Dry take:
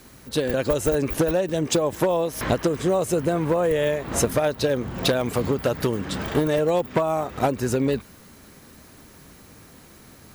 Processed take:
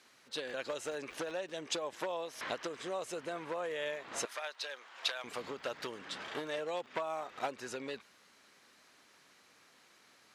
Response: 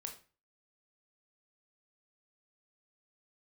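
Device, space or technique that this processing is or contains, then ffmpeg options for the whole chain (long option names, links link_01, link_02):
phone in a pocket: -filter_complex "[0:a]aderivative,asettb=1/sr,asplit=3[link_01][link_02][link_03];[link_01]atrim=end=4.254[link_04];[link_02]atrim=start=4.25:end=5.24,asetpts=PTS-STARTPTS,afade=type=in:duration=0.004:curve=qsin,afade=type=out:start_time=0.986:duration=0.004:curve=qsin,highpass=870[link_05];[link_03]atrim=start=5.236[link_06];[link_04][link_05]acrossfade=duration=0.004:curve1=hsin:curve2=qsin[link_07];[link_07][link_06]acrossfade=duration=0.004:curve1=qsin:curve2=hsin,lowpass=3900,lowshelf=frequency=130:gain=-6,highshelf=frequency=2200:gain=-9,volume=6.5dB"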